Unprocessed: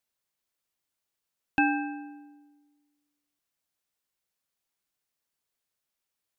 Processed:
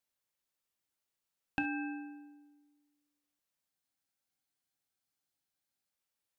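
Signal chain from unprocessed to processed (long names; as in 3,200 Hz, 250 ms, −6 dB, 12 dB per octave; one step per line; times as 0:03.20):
downward compressor, threshold −28 dBFS, peak gain reduction 8.5 dB
on a send at −8.5 dB: convolution reverb, pre-delay 3 ms
on the sum: frozen spectrum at 0:03.71, 2.21 s
level −4 dB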